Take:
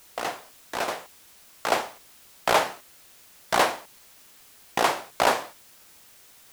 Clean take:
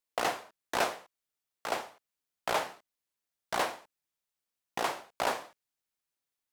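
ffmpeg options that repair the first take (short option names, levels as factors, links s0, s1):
-af "afwtdn=0.0022,asetnsamples=n=441:p=0,asendcmd='0.88 volume volume -9.5dB',volume=1"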